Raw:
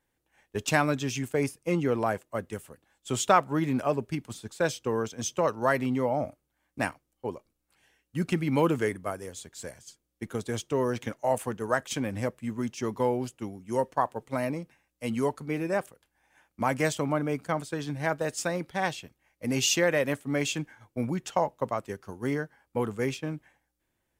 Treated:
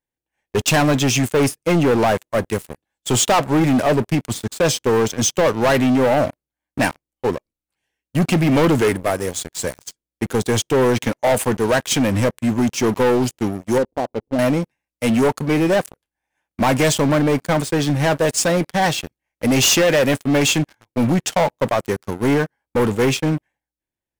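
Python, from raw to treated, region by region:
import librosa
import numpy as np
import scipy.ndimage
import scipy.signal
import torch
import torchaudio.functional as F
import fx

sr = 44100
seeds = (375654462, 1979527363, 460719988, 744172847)

y = fx.chain(x, sr, fx.gaussian_blur(sigma=15.0),
    fx.peak_eq(hz=140.0, db=-14.5, octaves=0.35), at=(13.78, 14.39))
y = fx.peak_eq(y, sr, hz=1300.0, db=-4.5, octaves=0.43)
y = fx.leveller(y, sr, passes=5)
y = F.gain(torch.from_numpy(y), -1.5).numpy()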